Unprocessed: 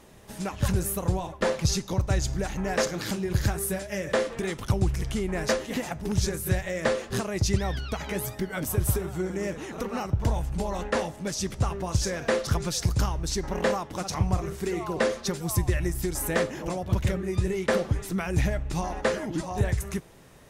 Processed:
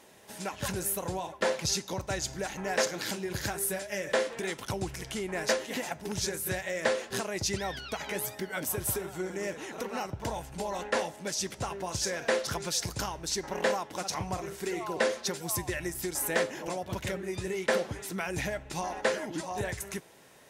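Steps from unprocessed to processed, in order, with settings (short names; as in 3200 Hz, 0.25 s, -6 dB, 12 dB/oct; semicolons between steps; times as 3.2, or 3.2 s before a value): HPF 490 Hz 6 dB/oct; notch 1200 Hz, Q 9.6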